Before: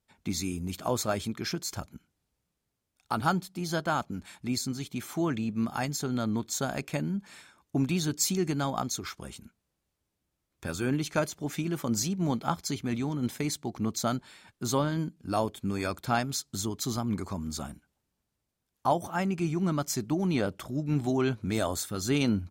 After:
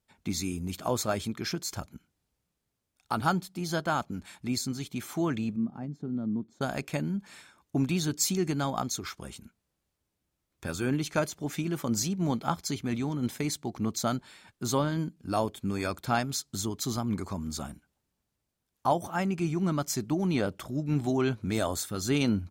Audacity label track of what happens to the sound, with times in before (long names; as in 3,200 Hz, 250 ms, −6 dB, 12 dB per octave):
5.560000	6.610000	resonant band-pass 210 Hz, Q 1.4